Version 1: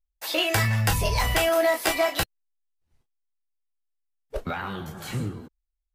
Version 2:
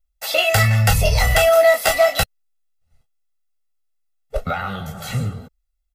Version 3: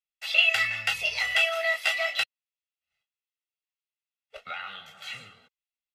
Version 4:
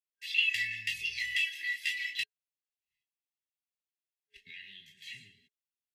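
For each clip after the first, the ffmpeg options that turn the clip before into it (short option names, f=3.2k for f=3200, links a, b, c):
-af "aecho=1:1:1.5:0.94,volume=3.5dB"
-af "bandpass=f=2.7k:t=q:w=2.3:csg=0"
-af "afftfilt=real='re*(1-between(b*sr/4096,420,1600))':imag='im*(1-between(b*sr/4096,420,1600))':win_size=4096:overlap=0.75,volume=-7dB"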